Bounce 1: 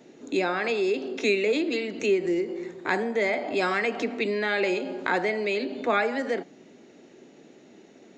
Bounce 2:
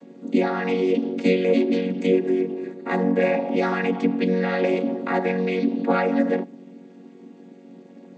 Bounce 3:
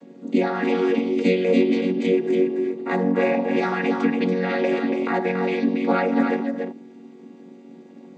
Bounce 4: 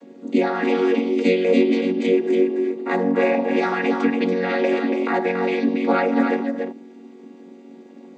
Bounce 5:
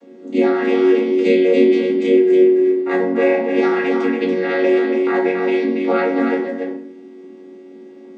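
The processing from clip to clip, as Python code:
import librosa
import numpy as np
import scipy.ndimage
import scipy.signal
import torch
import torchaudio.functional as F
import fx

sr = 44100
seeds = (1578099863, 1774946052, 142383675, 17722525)

y1 = fx.chord_vocoder(x, sr, chord='major triad', root=54)
y1 = y1 * librosa.db_to_amplitude(5.5)
y2 = y1 + 10.0 ** (-5.5 / 20.0) * np.pad(y1, (int(284 * sr / 1000.0), 0))[:len(y1)]
y3 = scipy.signal.sosfilt(scipy.signal.butter(4, 210.0, 'highpass', fs=sr, output='sos'), y2)
y3 = y3 * librosa.db_to_amplitude(2.0)
y4 = fx.room_shoebox(y3, sr, seeds[0], volume_m3=65.0, walls='mixed', distance_m=0.82)
y4 = y4 * librosa.db_to_amplitude(-3.0)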